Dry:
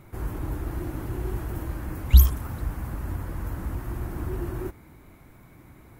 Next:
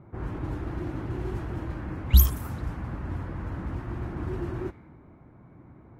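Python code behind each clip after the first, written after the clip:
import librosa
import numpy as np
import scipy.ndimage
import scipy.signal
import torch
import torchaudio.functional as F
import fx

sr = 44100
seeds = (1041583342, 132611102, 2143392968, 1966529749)

y = fx.highpass(x, sr, hz=150.0, slope=6)
y = fx.bass_treble(y, sr, bass_db=5, treble_db=2)
y = fx.env_lowpass(y, sr, base_hz=1000.0, full_db=-22.0)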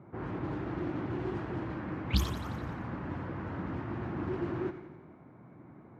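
y = fx.bandpass_edges(x, sr, low_hz=140.0, high_hz=4300.0)
y = fx.echo_feedback(y, sr, ms=88, feedback_pct=59, wet_db=-12.5)
y = fx.doppler_dist(y, sr, depth_ms=0.39)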